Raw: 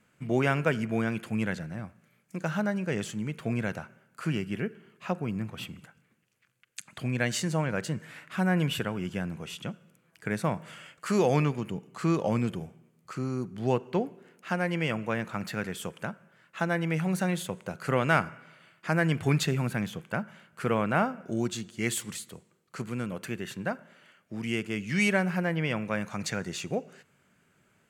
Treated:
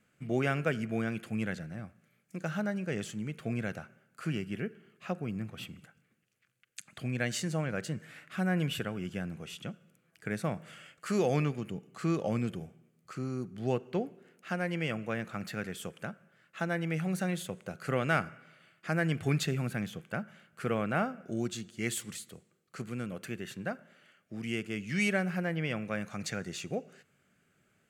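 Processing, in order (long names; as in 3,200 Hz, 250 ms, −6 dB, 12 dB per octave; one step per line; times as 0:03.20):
parametric band 960 Hz −11 dB 0.21 octaves
level −4 dB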